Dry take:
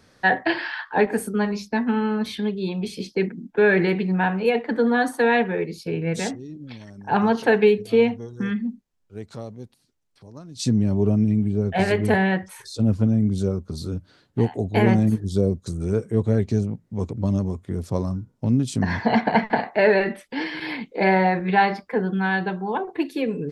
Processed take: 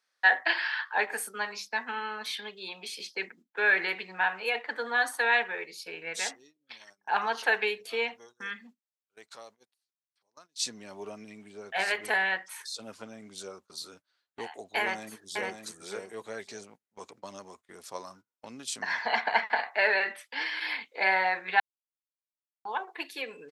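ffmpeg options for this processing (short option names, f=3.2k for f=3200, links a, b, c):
-filter_complex "[0:a]asplit=2[a][b];[b]afade=t=in:st=14.79:d=0.01,afade=t=out:st=15.62:d=0.01,aecho=0:1:560|1120|1680:0.595662|0.0893493|0.0134024[c];[a][c]amix=inputs=2:normalize=0,asplit=3[d][e][f];[d]atrim=end=21.6,asetpts=PTS-STARTPTS,afade=t=out:st=21.596:d=0.004:c=hsin[g];[e]atrim=start=21.6:end=22.65,asetpts=PTS-STARTPTS,volume=0[h];[f]atrim=start=22.65,asetpts=PTS-STARTPTS,afade=t=in:d=0.004:c=hsin[i];[g][h][i]concat=n=3:v=0:a=1,highpass=1.1k,agate=range=-18dB:threshold=-54dB:ratio=16:detection=peak"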